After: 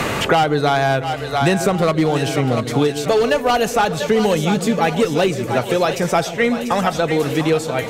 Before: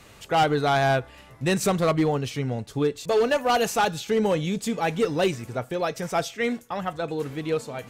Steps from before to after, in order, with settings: two-band feedback delay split 520 Hz, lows 139 ms, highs 691 ms, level -11 dB; three bands compressed up and down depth 100%; trim +5.5 dB

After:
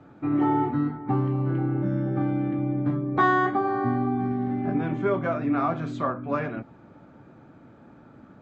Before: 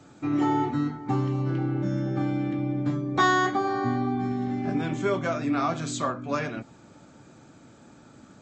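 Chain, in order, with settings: low-pass 1.8 kHz 12 dB/octave; trim +1.5 dB

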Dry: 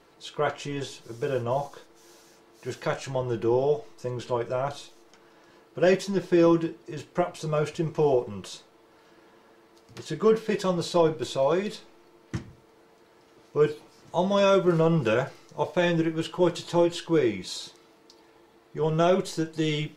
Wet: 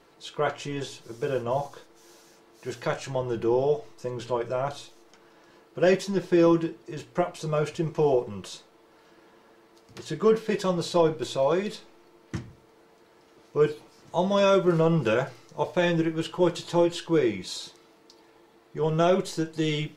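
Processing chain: hum notches 60/120 Hz

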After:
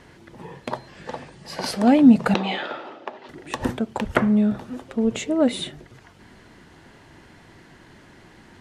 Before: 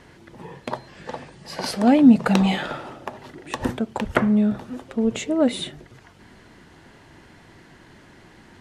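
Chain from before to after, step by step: 2.34–3.29 s: Chebyshev band-pass 340–3800 Hz, order 2

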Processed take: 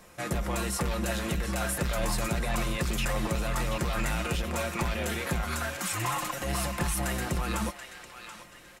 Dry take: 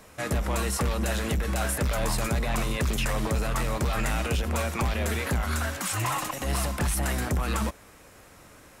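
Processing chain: comb 5.7 ms, depth 45%; band-passed feedback delay 731 ms, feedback 41%, band-pass 2.9 kHz, level -7 dB; trim -3 dB

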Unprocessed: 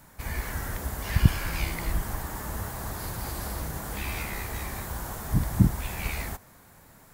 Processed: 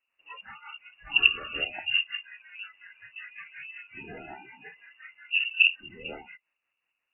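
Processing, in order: rotary cabinet horn 5.5 Hz; spectral noise reduction 26 dB; frequency inversion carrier 2.8 kHz

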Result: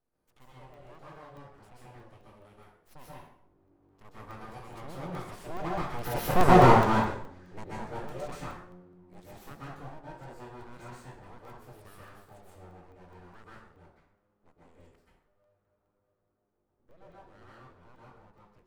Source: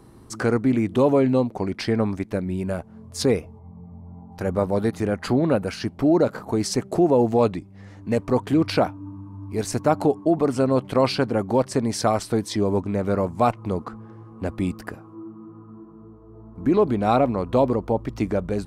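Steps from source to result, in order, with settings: Doppler pass-by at 6.46 s, 31 m/s, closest 4.2 m; full-wave rectifier; plate-style reverb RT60 0.67 s, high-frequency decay 0.75×, pre-delay 115 ms, DRR -6.5 dB; crackling interface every 0.21 s, samples 64, zero, from 0.74 s

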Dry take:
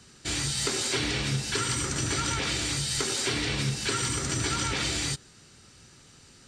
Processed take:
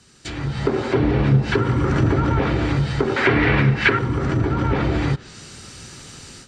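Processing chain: low-pass that closes with the level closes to 800 Hz, closed at -24.5 dBFS; 3.16–3.99 s: peaking EQ 2 kHz +14 dB 1.6 oct; level rider gain up to 14.5 dB

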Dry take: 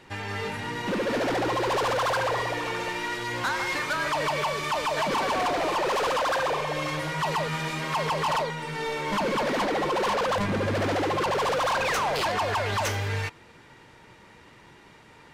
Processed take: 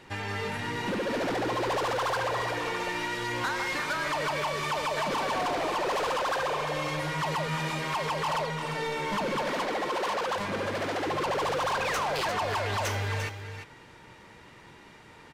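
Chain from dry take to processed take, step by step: 9.42–11.07 s: bass shelf 240 Hz -10 dB; compression, threshold -28 dBFS, peak gain reduction 4 dB; delay 348 ms -9 dB

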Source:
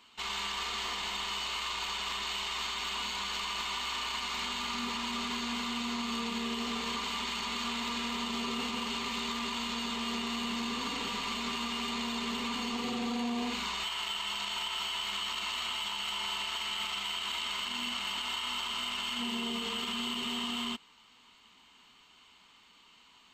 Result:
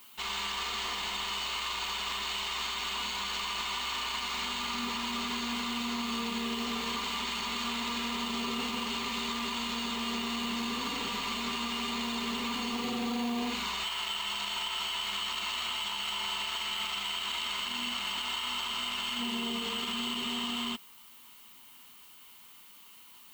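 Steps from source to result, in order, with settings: added noise violet -56 dBFS; trim +1 dB

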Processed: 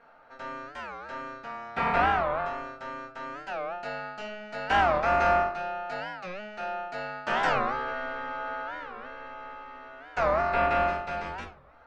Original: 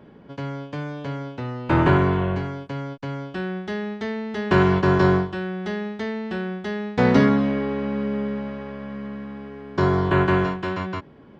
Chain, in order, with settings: fifteen-band graphic EQ 100 Hz -10 dB, 250 Hz -8 dB, 1 kHz -5 dB, 2.5 kHz -7 dB; ring modulator 1.1 kHz; simulated room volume 320 m³, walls furnished, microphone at 1.8 m; speed mistake 25 fps video run at 24 fps; warped record 45 rpm, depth 250 cents; trim -4.5 dB

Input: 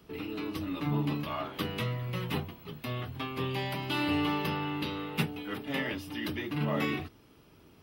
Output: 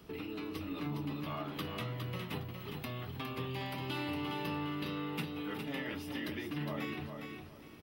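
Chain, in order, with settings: compression 2.5:1, threshold -43 dBFS, peak gain reduction 12.5 dB; on a send: feedback delay 410 ms, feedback 25%, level -6 dB; on the sum: trim +1.5 dB

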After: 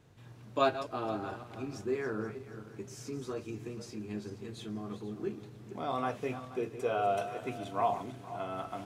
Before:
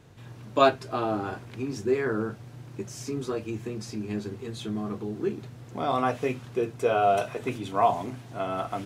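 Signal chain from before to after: backward echo that repeats 239 ms, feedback 53%, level -11.5 dB; trim -8 dB

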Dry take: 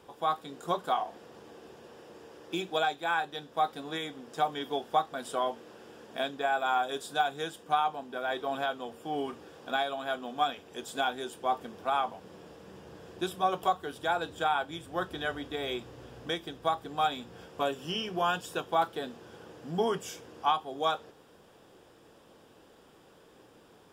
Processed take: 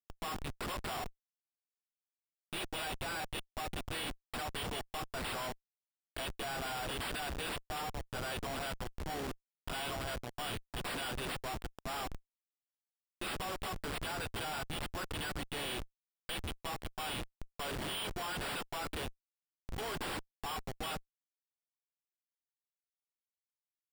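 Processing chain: pre-emphasis filter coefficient 0.97; Schmitt trigger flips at -51.5 dBFS; sample-and-hold 7×; trim +10.5 dB

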